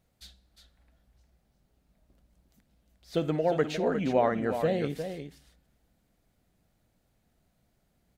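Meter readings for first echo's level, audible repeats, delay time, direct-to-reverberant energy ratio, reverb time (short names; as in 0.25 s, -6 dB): -19.0 dB, 2, 56 ms, none, none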